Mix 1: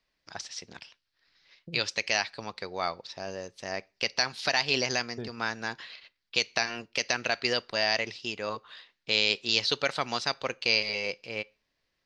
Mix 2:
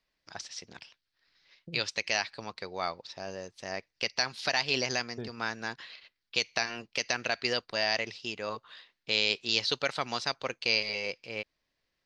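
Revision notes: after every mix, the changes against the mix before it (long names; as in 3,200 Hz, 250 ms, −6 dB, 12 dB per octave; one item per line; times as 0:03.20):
reverb: off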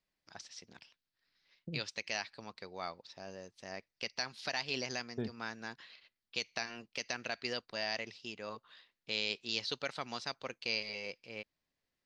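first voice −8.5 dB
master: add parametric band 220 Hz +3.5 dB 0.87 octaves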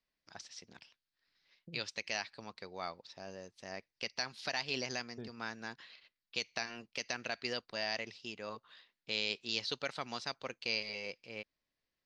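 second voice −8.5 dB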